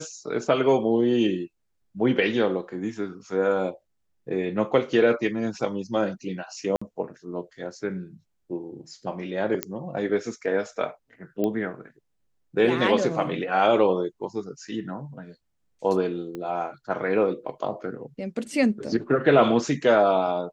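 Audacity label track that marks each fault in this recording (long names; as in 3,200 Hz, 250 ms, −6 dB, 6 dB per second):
6.760000	6.820000	drop-out 55 ms
9.630000	9.630000	click −8 dBFS
11.440000	11.440000	click −15 dBFS
16.350000	16.350000	click −22 dBFS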